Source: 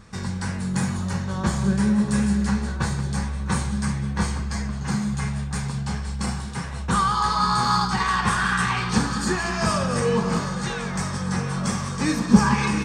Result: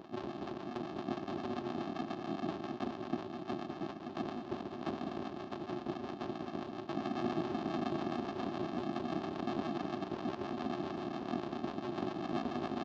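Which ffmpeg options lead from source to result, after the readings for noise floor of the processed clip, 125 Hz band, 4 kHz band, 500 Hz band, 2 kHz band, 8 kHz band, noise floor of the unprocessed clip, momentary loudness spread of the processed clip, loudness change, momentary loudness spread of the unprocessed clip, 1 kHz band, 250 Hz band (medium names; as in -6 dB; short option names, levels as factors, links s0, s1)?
-47 dBFS, -23.0 dB, -19.0 dB, -8.5 dB, -21.5 dB, under -30 dB, -30 dBFS, 5 LU, -16.0 dB, 8 LU, -16.0 dB, -14.0 dB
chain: -filter_complex "[0:a]afftfilt=real='hypot(re,im)*cos(2*PI*random(0))':imag='hypot(re,im)*sin(2*PI*random(1))':win_size=512:overlap=0.75,aderivative,asplit=2[s0][s1];[s1]alimiter=level_in=3.98:limit=0.0631:level=0:latency=1:release=32,volume=0.251,volume=1.26[s2];[s0][s2]amix=inputs=2:normalize=0,acompressor=threshold=0.01:ratio=12,aresample=16000,acrusher=samples=33:mix=1:aa=0.000001,aresample=44100,acompressor=mode=upward:threshold=0.00251:ratio=2.5,aeval=exprs='val(0)+0.000282*(sin(2*PI*50*n/s)+sin(2*PI*2*50*n/s)/2+sin(2*PI*3*50*n/s)/3+sin(2*PI*4*50*n/s)/4+sin(2*PI*5*50*n/s)/5)':c=same,aeval=exprs='0.0141*(abs(mod(val(0)/0.0141+3,4)-2)-1)':c=same,acrusher=bits=7:mode=log:mix=0:aa=0.000001,acrossover=split=620[s3][s4];[s3]aeval=exprs='val(0)*(1-0.5/2+0.5/2*cos(2*PI*7.3*n/s))':c=same[s5];[s4]aeval=exprs='val(0)*(1-0.5/2-0.5/2*cos(2*PI*7.3*n/s))':c=same[s6];[s5][s6]amix=inputs=2:normalize=0,highpass=230,equalizer=f=240:t=q:w=4:g=4,equalizer=f=360:t=q:w=4:g=10,equalizer=f=700:t=q:w=4:g=5,equalizer=f=1000:t=q:w=4:g=7,equalizer=f=2100:t=q:w=4:g=-6,lowpass=f=4400:w=0.5412,lowpass=f=4400:w=1.3066,aecho=1:1:206:0.299,volume=3.55"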